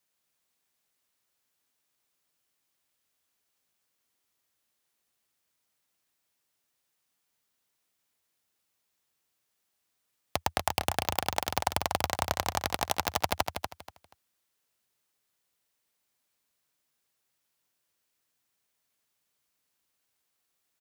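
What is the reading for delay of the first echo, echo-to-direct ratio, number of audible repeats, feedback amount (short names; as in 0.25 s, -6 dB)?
0.24 s, -6.0 dB, 3, 23%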